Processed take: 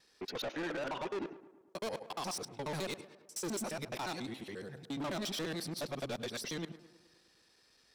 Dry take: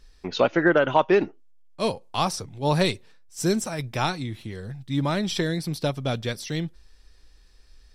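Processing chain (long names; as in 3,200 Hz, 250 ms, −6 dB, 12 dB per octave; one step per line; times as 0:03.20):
reversed piece by piece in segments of 70 ms
high-pass filter 260 Hz 12 dB per octave
brickwall limiter −17 dBFS, peak gain reduction 10 dB
soft clipping −32 dBFS, distortion −7 dB
on a send: tape delay 106 ms, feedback 67%, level −12 dB, low-pass 2,000 Hz
on the sum: level −3 dB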